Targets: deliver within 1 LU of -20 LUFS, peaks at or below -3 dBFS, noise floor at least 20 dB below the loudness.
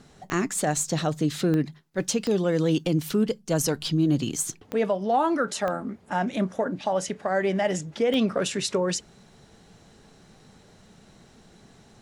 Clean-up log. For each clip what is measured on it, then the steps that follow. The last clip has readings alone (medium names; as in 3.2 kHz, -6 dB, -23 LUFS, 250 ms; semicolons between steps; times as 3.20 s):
clicks found 6; loudness -26.0 LUFS; peak level -13.5 dBFS; loudness target -20.0 LUFS
-> de-click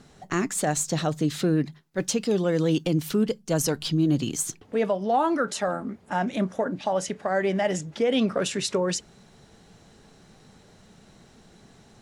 clicks found 0; loudness -26.0 LUFS; peak level -14.0 dBFS; loudness target -20.0 LUFS
-> trim +6 dB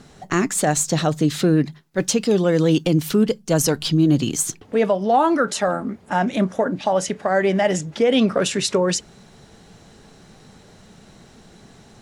loudness -20.0 LUFS; peak level -8.0 dBFS; noise floor -49 dBFS